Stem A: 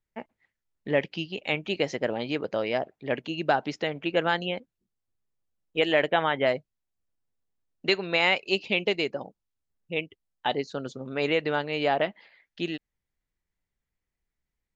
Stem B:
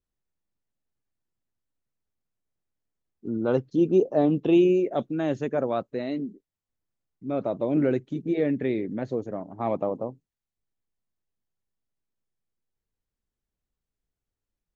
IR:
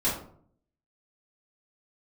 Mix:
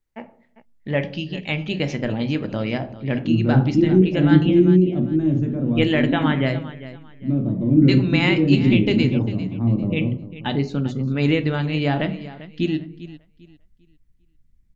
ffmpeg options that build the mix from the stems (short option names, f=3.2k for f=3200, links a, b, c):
-filter_complex "[0:a]volume=1dB,asplit=3[a][b][c];[b]volume=-17.5dB[d];[c]volume=-14.5dB[e];[1:a]acrossover=split=460[f][g];[g]acompressor=threshold=-42dB:ratio=2.5[h];[f][h]amix=inputs=2:normalize=0,volume=-4dB,asplit=4[i][j][k][l];[j]volume=-11dB[m];[k]volume=-11.5dB[n];[l]apad=whole_len=650808[o];[a][o]sidechaincompress=threshold=-28dB:ratio=12:attack=16:release=271[p];[2:a]atrim=start_sample=2205[q];[d][m]amix=inputs=2:normalize=0[r];[r][q]afir=irnorm=-1:irlink=0[s];[e][n]amix=inputs=2:normalize=0,aecho=0:1:398|796|1194|1592:1|0.28|0.0784|0.022[t];[p][i][s][t]amix=inputs=4:normalize=0,asubboost=boost=11:cutoff=180"